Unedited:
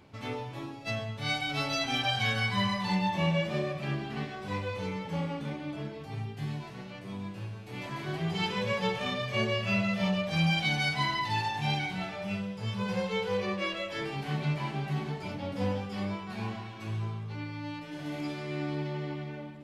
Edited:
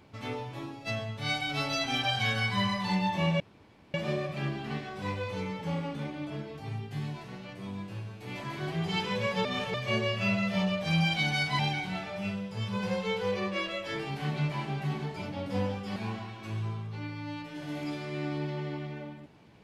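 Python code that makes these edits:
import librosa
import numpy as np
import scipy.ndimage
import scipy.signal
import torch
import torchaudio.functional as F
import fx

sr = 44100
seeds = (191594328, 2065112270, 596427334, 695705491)

y = fx.edit(x, sr, fx.insert_room_tone(at_s=3.4, length_s=0.54),
    fx.reverse_span(start_s=8.91, length_s=0.29),
    fx.cut(start_s=11.05, length_s=0.6),
    fx.cut(start_s=16.02, length_s=0.31), tone=tone)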